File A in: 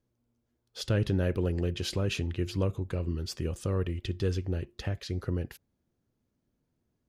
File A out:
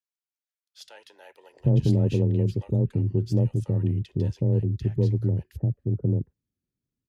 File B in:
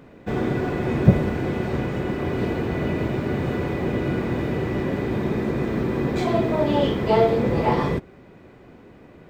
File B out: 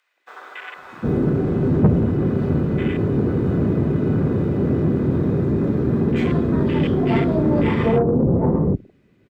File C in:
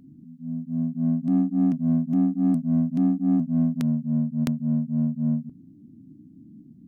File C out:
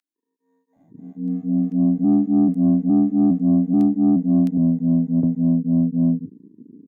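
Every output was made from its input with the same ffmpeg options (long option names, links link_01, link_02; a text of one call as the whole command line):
ffmpeg -i in.wav -filter_complex "[0:a]afwtdn=0.0251,equalizer=frequency=750:width=0.73:gain=-10.5,acrossover=split=870[link_01][link_02];[link_01]adelay=760[link_03];[link_03][link_02]amix=inputs=2:normalize=0,asoftclip=type=tanh:threshold=-18dB,afreqshift=18,volume=9dB" out.wav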